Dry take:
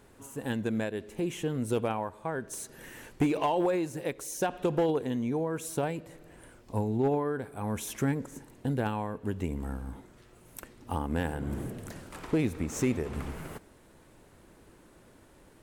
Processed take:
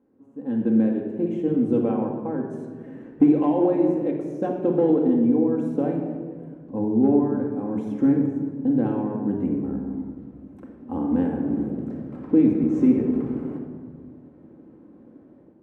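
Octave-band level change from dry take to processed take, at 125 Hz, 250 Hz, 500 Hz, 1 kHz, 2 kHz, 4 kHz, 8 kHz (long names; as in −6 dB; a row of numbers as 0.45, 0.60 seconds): +2.5 dB, +12.5 dB, +6.5 dB, +0.5 dB, can't be measured, below −10 dB, below −20 dB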